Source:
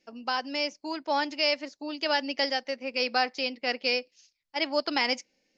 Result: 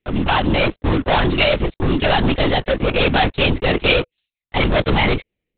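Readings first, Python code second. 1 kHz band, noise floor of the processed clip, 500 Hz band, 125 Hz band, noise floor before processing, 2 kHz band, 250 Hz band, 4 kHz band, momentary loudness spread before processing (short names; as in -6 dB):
+10.0 dB, -84 dBFS, +12.0 dB, n/a, -77 dBFS, +10.0 dB, +15.5 dB, +7.5 dB, 6 LU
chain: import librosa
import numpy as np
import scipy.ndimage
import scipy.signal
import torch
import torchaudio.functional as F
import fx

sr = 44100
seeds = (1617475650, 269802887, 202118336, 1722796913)

y = fx.peak_eq(x, sr, hz=190.0, db=12.5, octaves=2.7)
y = fx.leveller(y, sr, passes=5)
y = fx.lpc_vocoder(y, sr, seeds[0], excitation='whisper', order=10)
y = fx.high_shelf(y, sr, hz=2700.0, db=11.5)
y = y * 10.0 ** (-4.0 / 20.0)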